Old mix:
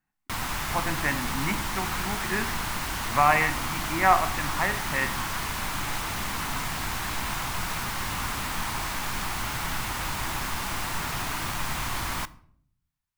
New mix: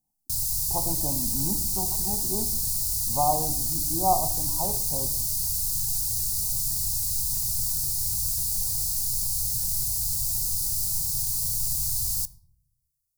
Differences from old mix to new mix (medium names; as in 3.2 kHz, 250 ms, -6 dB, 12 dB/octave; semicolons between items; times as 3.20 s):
background: add FFT filter 130 Hz 0 dB, 350 Hz -29 dB, 9.7 kHz +13 dB; master: add elliptic band-stop 840–4500 Hz, stop band 50 dB